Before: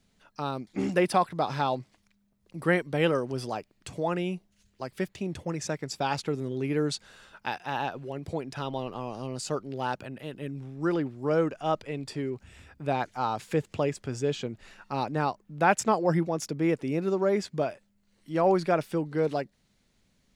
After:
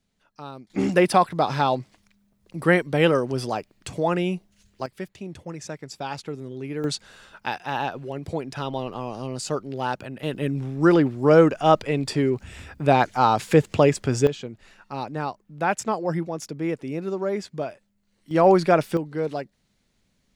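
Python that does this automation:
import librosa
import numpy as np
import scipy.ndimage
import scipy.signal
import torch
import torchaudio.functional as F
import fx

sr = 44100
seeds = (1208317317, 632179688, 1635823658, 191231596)

y = fx.gain(x, sr, db=fx.steps((0.0, -6.0), (0.7, 6.0), (4.86, -3.0), (6.84, 4.0), (10.23, 10.5), (14.27, -1.0), (18.31, 7.0), (18.97, 0.0)))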